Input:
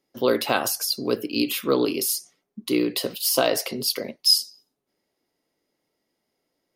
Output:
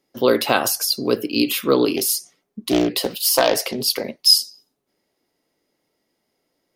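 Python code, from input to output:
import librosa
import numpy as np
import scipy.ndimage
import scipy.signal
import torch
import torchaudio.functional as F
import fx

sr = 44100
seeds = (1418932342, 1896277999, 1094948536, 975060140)

y = fx.doppler_dist(x, sr, depth_ms=0.41, at=(1.96, 4.04))
y = y * librosa.db_to_amplitude(4.5)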